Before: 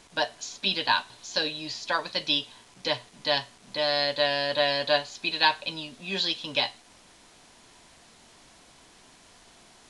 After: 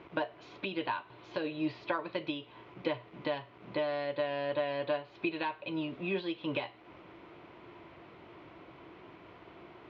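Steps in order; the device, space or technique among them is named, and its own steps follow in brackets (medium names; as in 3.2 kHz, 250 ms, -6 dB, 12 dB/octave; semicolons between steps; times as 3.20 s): bass amplifier (compression 5:1, threshold -34 dBFS, peak gain reduction 16 dB; cabinet simulation 86–2300 Hz, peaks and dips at 110 Hz +3 dB, 230 Hz -9 dB, 340 Hz +9 dB, 790 Hz -5 dB, 1.7 kHz -9 dB); trim +6 dB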